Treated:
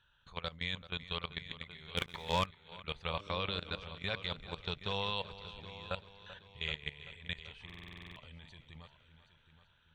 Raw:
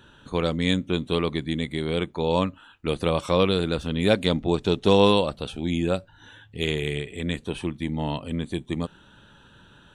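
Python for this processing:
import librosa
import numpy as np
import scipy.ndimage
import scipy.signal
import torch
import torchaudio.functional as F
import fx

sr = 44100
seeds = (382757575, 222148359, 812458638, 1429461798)

y = fx.tone_stack(x, sr, knobs='10-0-10')
y = fx.dmg_buzz(y, sr, base_hz=100.0, harmonics=6, level_db=-46.0, tilt_db=0, odd_only=False, at=(3.18, 3.78), fade=0.02)
y = fx.level_steps(y, sr, step_db=18)
y = fx.air_absorb(y, sr, metres=200.0)
y = fx.echo_heads(y, sr, ms=386, heads='first and second', feedback_pct=41, wet_db=-15.5)
y = fx.leveller(y, sr, passes=2, at=(1.97, 2.46))
y = fx.buffer_glitch(y, sr, at_s=(7.65,), block=2048, repeats=10)
y = F.gain(torch.from_numpy(y), 2.5).numpy()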